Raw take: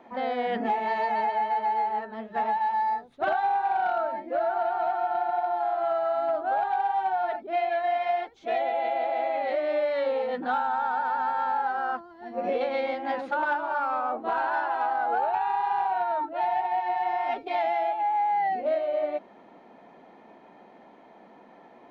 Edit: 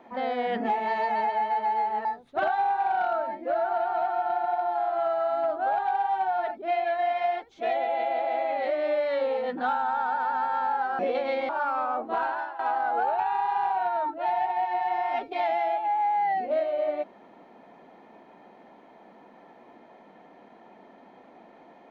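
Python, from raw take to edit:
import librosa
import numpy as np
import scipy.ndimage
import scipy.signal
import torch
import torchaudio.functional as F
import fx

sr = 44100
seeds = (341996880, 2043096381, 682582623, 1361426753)

y = fx.edit(x, sr, fx.cut(start_s=2.05, length_s=0.85),
    fx.cut(start_s=11.84, length_s=0.61),
    fx.cut(start_s=12.95, length_s=0.69),
    fx.fade_out_to(start_s=14.35, length_s=0.39, floor_db=-15.0), tone=tone)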